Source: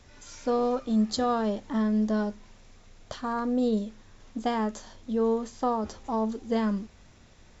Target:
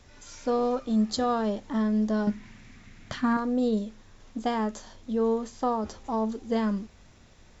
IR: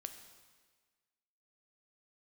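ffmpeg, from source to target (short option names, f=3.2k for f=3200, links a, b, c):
-filter_complex "[0:a]asettb=1/sr,asplit=3[a][b][c];[a]atrim=end=2.274[d];[b]atrim=start=2.27:end=3.37,asetpts=PTS-STARTPTS,afade=t=in:d=0.004:c=qsin,afade=t=out:st=1.096:d=0.004:c=qsin,equalizer=f=125:t=o:w=1:g=8,equalizer=f=250:t=o:w=1:g=10,equalizer=f=500:t=o:w=1:g=-6,equalizer=f=2k:t=o:w=1:g=11[e];[c]atrim=start=3.366[f];[d][e]acrossfade=d=0.004:c1=hsin:c2=qsin[g];[g][f]acrossfade=d=0.004:c1=qsin:c2=hsin"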